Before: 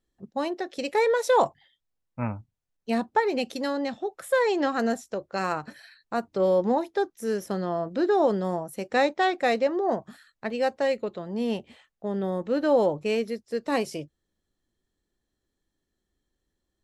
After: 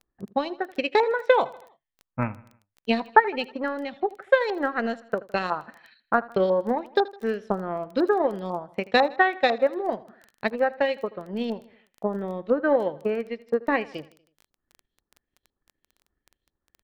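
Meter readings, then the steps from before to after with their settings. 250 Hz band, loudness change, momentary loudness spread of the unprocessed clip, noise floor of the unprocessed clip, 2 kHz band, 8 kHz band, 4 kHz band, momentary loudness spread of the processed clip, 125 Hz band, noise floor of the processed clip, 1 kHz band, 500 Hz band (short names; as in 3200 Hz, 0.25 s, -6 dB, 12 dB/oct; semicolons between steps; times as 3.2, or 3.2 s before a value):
-1.0 dB, +1.0 dB, 11 LU, -81 dBFS, +5.0 dB, under -10 dB, +2.0 dB, 11 LU, -1.0 dB, under -85 dBFS, +2.5 dB, +0.5 dB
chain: transient shaper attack +10 dB, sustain -6 dB; LFO low-pass saw up 2 Hz 980–4300 Hz; on a send: feedback echo 80 ms, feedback 51%, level -20 dB; on the sum: crackle 12/s -32 dBFS; gain -4 dB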